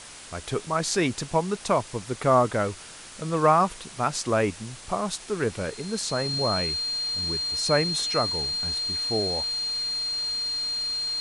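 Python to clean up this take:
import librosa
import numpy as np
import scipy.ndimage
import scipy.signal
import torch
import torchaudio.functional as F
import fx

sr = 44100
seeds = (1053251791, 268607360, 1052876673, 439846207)

y = fx.notch(x, sr, hz=4200.0, q=30.0)
y = fx.noise_reduce(y, sr, print_start_s=2.72, print_end_s=3.22, reduce_db=27.0)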